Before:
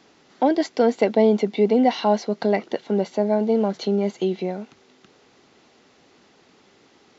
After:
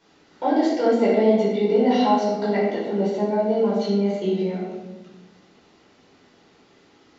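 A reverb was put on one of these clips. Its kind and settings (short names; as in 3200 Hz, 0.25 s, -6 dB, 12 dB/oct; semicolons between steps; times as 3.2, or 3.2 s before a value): shoebox room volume 550 m³, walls mixed, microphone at 4.7 m; gain -11 dB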